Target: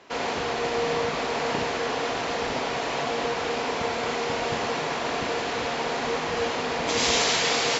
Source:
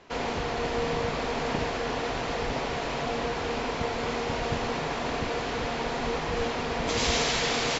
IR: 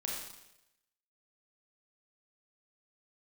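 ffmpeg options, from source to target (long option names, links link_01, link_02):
-filter_complex "[0:a]highpass=frequency=250:poles=1,asplit=2[link_01][link_02];[1:a]atrim=start_sample=2205,highshelf=frequency=6300:gain=7.5[link_03];[link_02][link_03]afir=irnorm=-1:irlink=0,volume=-5.5dB[link_04];[link_01][link_04]amix=inputs=2:normalize=0"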